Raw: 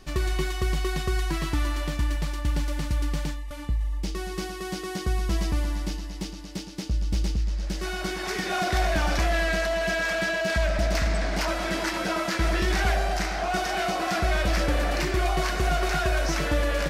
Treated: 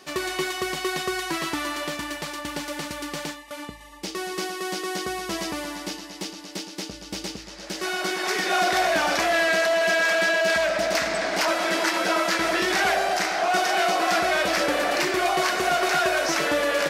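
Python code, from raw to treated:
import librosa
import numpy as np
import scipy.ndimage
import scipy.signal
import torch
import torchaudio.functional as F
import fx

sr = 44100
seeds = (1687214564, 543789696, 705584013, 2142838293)

y = scipy.signal.sosfilt(scipy.signal.butter(2, 340.0, 'highpass', fs=sr, output='sos'), x)
y = y * librosa.db_to_amplitude(5.5)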